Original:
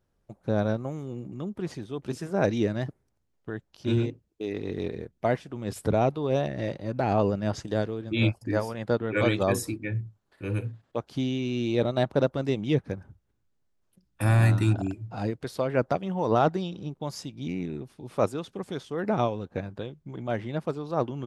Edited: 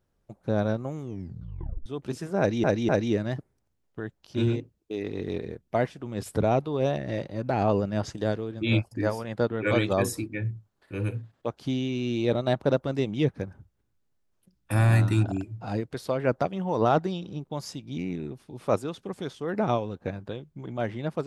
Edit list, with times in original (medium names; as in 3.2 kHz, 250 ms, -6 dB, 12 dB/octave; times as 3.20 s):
1.02 s: tape stop 0.84 s
2.39–2.64 s: loop, 3 plays